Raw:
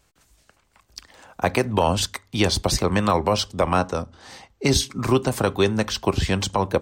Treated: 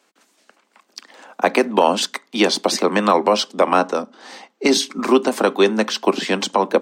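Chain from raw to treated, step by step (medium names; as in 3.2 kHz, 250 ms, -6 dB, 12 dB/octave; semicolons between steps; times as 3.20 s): steep high-pass 210 Hz 48 dB/octave; treble shelf 7.7 kHz -10 dB; trim +5.5 dB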